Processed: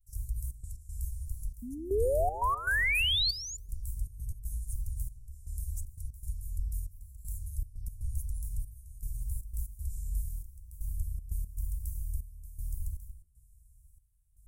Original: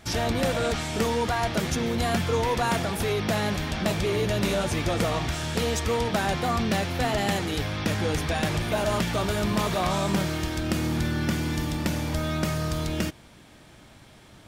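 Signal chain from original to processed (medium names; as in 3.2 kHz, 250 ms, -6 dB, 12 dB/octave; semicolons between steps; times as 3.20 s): octave divider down 2 oct, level -2 dB; vibrato 0.87 Hz 87 cents; inverse Chebyshev band-stop 250–3400 Hz, stop band 60 dB; reverberation RT60 0.55 s, pre-delay 5 ms, DRR 13 dB; painted sound rise, 1.62–3.57 s, 230–7200 Hz -25 dBFS; trance gate ".xxx.x.xxxxx.." 118 bpm -12 dB; band-passed feedback delay 145 ms, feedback 67%, band-pass 340 Hz, level -14 dB; trim -3 dB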